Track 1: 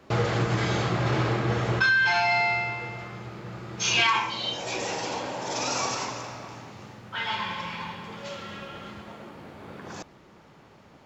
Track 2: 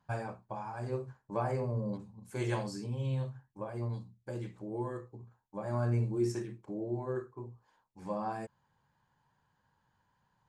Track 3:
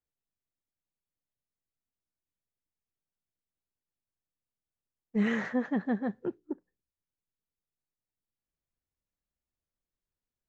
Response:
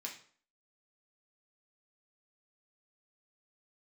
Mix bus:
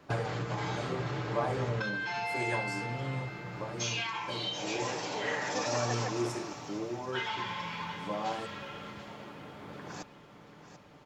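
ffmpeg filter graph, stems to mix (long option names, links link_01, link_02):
-filter_complex "[0:a]acompressor=threshold=-29dB:ratio=6,volume=-4dB,asplit=2[link_01][link_02];[link_02]volume=-12.5dB[link_03];[1:a]highpass=190,volume=1dB[link_04];[2:a]highpass=frequency=470:width=0.5412,highpass=frequency=470:width=1.3066,volume=-0.5dB[link_05];[link_03]aecho=0:1:737|1474|2211|2948|3685|4422:1|0.45|0.202|0.0911|0.041|0.0185[link_06];[link_01][link_04][link_05][link_06]amix=inputs=4:normalize=0,aecho=1:1:6.8:0.36"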